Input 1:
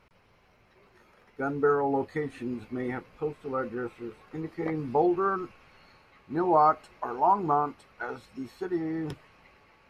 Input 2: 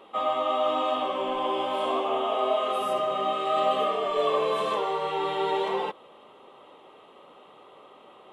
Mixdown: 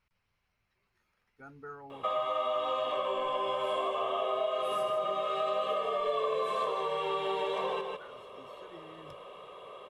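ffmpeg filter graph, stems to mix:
ffmpeg -i stem1.wav -i stem2.wav -filter_complex "[0:a]equalizer=frequency=420:width_type=o:width=2.7:gain=-11.5,volume=-12.5dB[link_01];[1:a]aecho=1:1:1.8:0.72,adelay=1900,volume=0.5dB,asplit=2[link_02][link_03];[link_03]volume=-8.5dB,aecho=0:1:153:1[link_04];[link_01][link_02][link_04]amix=inputs=3:normalize=0,acompressor=threshold=-30dB:ratio=4" out.wav

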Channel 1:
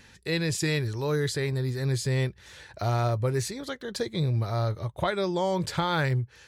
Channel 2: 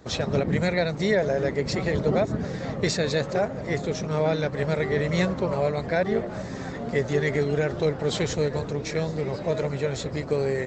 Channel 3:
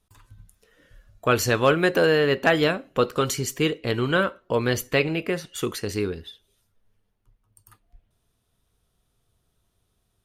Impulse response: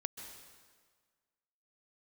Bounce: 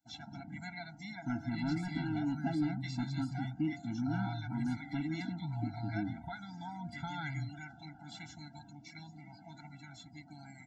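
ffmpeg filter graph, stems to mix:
-filter_complex "[0:a]adelay=1250,volume=-13dB[link_01];[1:a]aemphasis=mode=production:type=bsi,bandreject=frequency=84.5:width_type=h:width=4,bandreject=frequency=169:width_type=h:width=4,bandreject=frequency=253.5:width_type=h:width=4,bandreject=frequency=338:width_type=h:width=4,bandreject=frequency=422.5:width_type=h:width=4,bandreject=frequency=507:width_type=h:width=4,bandreject=frequency=591.5:width_type=h:width=4,bandreject=frequency=676:width_type=h:width=4,bandreject=frequency=760.5:width_type=h:width=4,bandreject=frequency=845:width_type=h:width=4,bandreject=frequency=929.5:width_type=h:width=4,bandreject=frequency=1014:width_type=h:width=4,bandreject=frequency=1098.5:width_type=h:width=4,bandreject=frequency=1183:width_type=h:width=4,bandreject=frequency=1267.5:width_type=h:width=4,bandreject=frequency=1352:width_type=h:width=4,bandreject=frequency=1436.5:width_type=h:width=4,bandreject=frequency=1521:width_type=h:width=4,bandreject=frequency=1605.5:width_type=h:width=4,bandreject=frequency=1690:width_type=h:width=4,bandreject=frequency=1774.5:width_type=h:width=4,bandreject=frequency=1859:width_type=h:width=4,bandreject=frequency=1943.5:width_type=h:width=4,volume=-14dB[link_02];[2:a]bandpass=frequency=280:width_type=q:width=1.4:csg=0,asoftclip=type=hard:threshold=-19dB,volume=-4dB[link_03];[link_01][link_02][link_03]amix=inputs=3:normalize=0,afftdn=noise_reduction=17:noise_floor=-53,acrossover=split=4000[link_04][link_05];[link_05]acompressor=threshold=-57dB:ratio=4:attack=1:release=60[link_06];[link_04][link_06]amix=inputs=2:normalize=0,afftfilt=real='re*eq(mod(floor(b*sr/1024/330),2),0)':imag='im*eq(mod(floor(b*sr/1024/330),2),0)':win_size=1024:overlap=0.75"

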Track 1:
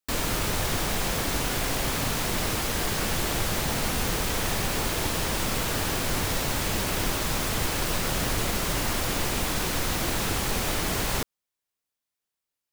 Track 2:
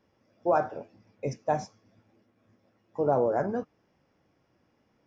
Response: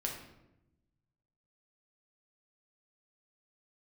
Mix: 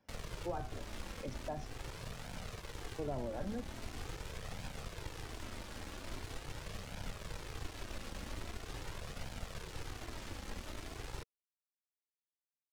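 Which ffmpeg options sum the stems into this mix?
-filter_complex "[0:a]acrusher=bits=3:mix=0:aa=0.5,adynamicsmooth=sensitivity=7.5:basefreq=1900,equalizer=frequency=460:width=4.9:gain=2.5,volume=-10dB[link_01];[1:a]volume=-0.5dB[link_02];[link_01][link_02]amix=inputs=2:normalize=0,acrossover=split=200[link_03][link_04];[link_04]acompressor=threshold=-46dB:ratio=2[link_05];[link_03][link_05]amix=inputs=2:normalize=0,flanger=delay=1.2:depth=2.6:regen=-34:speed=0.43:shape=triangular"

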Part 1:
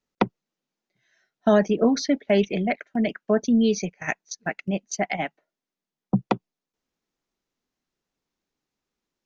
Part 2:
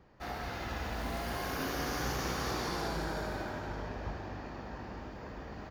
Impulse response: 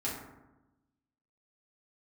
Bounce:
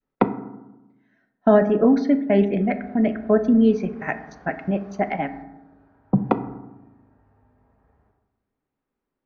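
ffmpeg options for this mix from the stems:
-filter_complex "[0:a]volume=2dB,asplit=3[link_01][link_02][link_03];[link_02]volume=-11dB[link_04];[1:a]equalizer=frequency=290:width=3.9:gain=-11.5,acompressor=threshold=-39dB:ratio=2,adelay=2400,volume=-11.5dB,asplit=2[link_05][link_06];[link_06]volume=-12dB[link_07];[link_03]apad=whole_len=357272[link_08];[link_05][link_08]sidechaingate=range=-33dB:threshold=-46dB:ratio=16:detection=peak[link_09];[2:a]atrim=start_sample=2205[link_10];[link_04][link_07]amix=inputs=2:normalize=0[link_11];[link_11][link_10]afir=irnorm=-1:irlink=0[link_12];[link_01][link_09][link_12]amix=inputs=3:normalize=0,adynamicequalizer=threshold=0.0447:dfrequency=630:dqfactor=0.85:tfrequency=630:tqfactor=0.85:attack=5:release=100:ratio=0.375:range=2.5:mode=cutabove:tftype=bell,lowpass=1600"

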